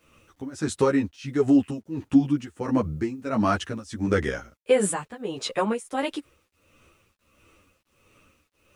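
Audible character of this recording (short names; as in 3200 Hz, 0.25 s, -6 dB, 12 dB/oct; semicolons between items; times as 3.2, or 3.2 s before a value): tremolo triangle 1.5 Hz, depth 95%; a quantiser's noise floor 12-bit, dither none; a shimmering, thickened sound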